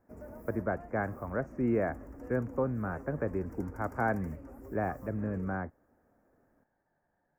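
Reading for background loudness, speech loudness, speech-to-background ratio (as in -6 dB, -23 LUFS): -48.5 LUFS, -34.5 LUFS, 14.0 dB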